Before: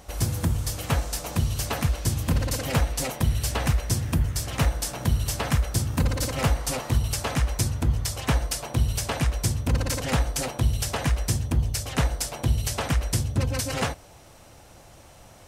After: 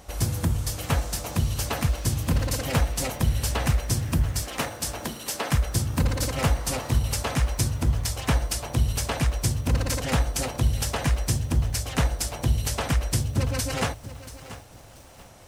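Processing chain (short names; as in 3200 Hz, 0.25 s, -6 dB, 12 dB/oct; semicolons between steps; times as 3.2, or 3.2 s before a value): 4.42–5.52 HPF 220 Hz 24 dB/oct; lo-fi delay 0.684 s, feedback 35%, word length 7-bit, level -14.5 dB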